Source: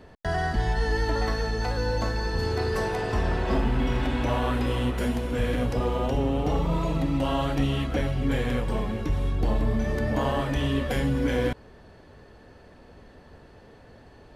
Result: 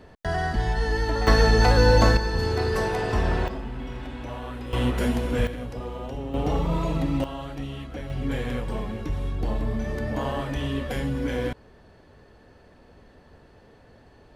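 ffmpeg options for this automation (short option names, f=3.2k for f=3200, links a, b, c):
-af "asetnsamples=n=441:p=0,asendcmd='1.27 volume volume 10dB;2.17 volume volume 2dB;3.48 volume volume -9.5dB;4.73 volume volume 2.5dB;5.47 volume volume -8dB;6.34 volume volume 0.5dB;7.24 volume volume -9dB;8.1 volume volume -2.5dB',volume=0.5dB"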